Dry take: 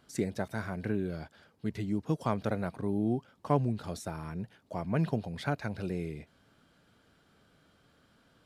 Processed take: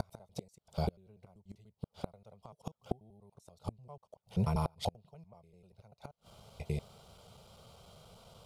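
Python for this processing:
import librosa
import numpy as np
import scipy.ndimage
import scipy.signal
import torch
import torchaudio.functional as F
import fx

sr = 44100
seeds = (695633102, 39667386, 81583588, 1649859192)

y = fx.block_reorder(x, sr, ms=97.0, group=7)
y = fx.fixed_phaser(y, sr, hz=700.0, stages=4)
y = fx.gate_flip(y, sr, shuts_db=-33.0, range_db=-34)
y = y * librosa.db_to_amplitude(12.5)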